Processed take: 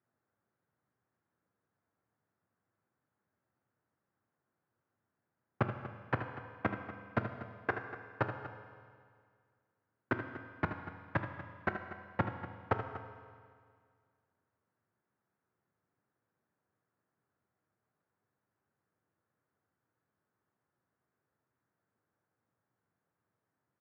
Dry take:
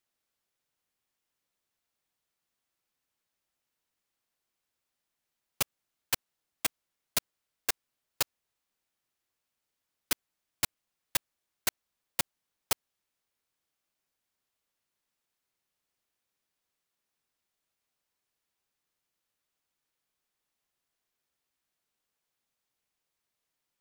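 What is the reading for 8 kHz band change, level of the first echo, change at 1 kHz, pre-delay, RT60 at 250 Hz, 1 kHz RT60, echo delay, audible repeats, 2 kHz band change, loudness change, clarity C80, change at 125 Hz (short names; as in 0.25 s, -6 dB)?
under -40 dB, -10.5 dB, +5.5 dB, 12 ms, 2.0 s, 2.0 s, 78 ms, 2, +1.0 dB, -5.0 dB, 8.0 dB, +13.0 dB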